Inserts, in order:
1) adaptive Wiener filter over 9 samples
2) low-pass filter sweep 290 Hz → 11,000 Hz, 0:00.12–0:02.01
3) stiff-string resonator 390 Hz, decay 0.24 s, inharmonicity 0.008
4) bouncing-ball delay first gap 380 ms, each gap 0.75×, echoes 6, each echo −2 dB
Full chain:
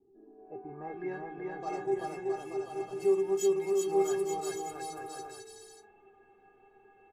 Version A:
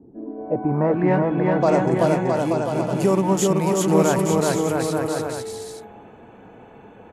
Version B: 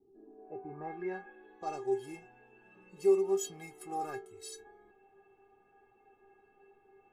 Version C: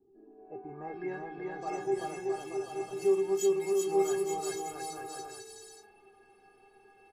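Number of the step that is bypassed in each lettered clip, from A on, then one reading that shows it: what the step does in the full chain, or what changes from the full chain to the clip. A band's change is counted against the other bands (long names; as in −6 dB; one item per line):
3, 125 Hz band +14.0 dB
4, change in crest factor +5.0 dB
1, 4 kHz band +2.0 dB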